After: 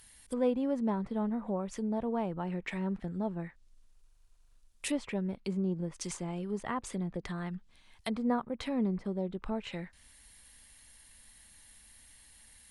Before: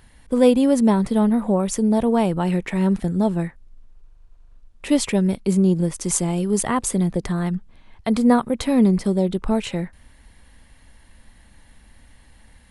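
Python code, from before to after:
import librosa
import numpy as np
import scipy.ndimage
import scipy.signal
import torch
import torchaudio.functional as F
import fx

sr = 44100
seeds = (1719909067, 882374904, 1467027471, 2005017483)

y = fx.env_lowpass_down(x, sr, base_hz=1200.0, full_db=-17.0)
y = F.preemphasis(torch.from_numpy(y), 0.9).numpy()
y = y * librosa.db_to_amplitude(4.5)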